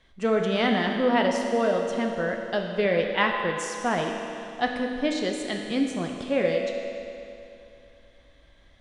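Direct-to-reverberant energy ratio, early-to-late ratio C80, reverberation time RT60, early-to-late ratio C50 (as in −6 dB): 1.5 dB, 4.0 dB, 2.8 s, 3.0 dB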